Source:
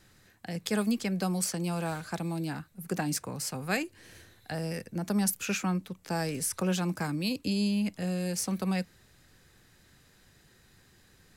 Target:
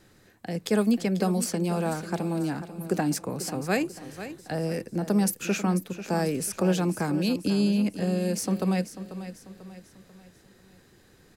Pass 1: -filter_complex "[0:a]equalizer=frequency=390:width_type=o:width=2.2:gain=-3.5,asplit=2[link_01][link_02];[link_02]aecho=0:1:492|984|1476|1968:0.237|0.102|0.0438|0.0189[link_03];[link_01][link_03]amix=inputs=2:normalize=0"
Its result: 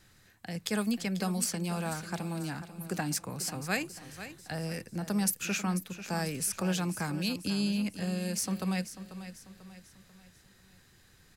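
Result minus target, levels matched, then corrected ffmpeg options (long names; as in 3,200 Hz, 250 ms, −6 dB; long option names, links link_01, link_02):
500 Hz band −4.5 dB
-filter_complex "[0:a]equalizer=frequency=390:width_type=o:width=2.2:gain=8,asplit=2[link_01][link_02];[link_02]aecho=0:1:492|984|1476|1968:0.237|0.102|0.0438|0.0189[link_03];[link_01][link_03]amix=inputs=2:normalize=0"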